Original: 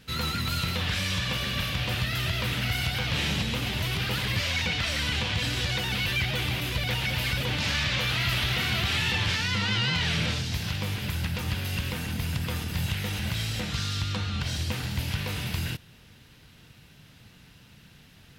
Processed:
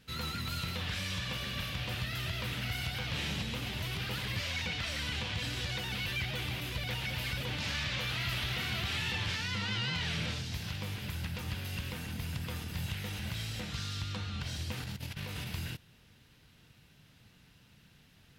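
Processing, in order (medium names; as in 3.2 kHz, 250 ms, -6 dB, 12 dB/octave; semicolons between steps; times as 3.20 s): 14.77–15.47 s: compressor with a negative ratio -32 dBFS, ratio -0.5; trim -8 dB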